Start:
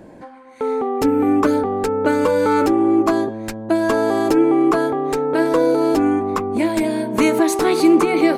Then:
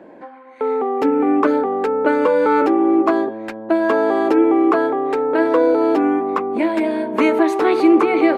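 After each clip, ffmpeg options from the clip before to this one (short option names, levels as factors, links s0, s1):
-filter_complex "[0:a]acrossover=split=230 3300:gain=0.0708 1 0.112[s0][s1][s2];[s0][s1][s2]amix=inputs=3:normalize=0,volume=1.26"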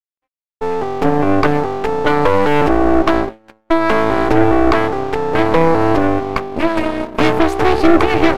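-af "aeval=exprs='sgn(val(0))*max(abs(val(0))-0.0224,0)':c=same,aeval=exprs='0.75*(cos(1*acos(clip(val(0)/0.75,-1,1)))-cos(1*PI/2))+0.188*(cos(6*acos(clip(val(0)/0.75,-1,1)))-cos(6*PI/2))':c=same,agate=range=0.0224:threshold=0.112:ratio=3:detection=peak,volume=1.12"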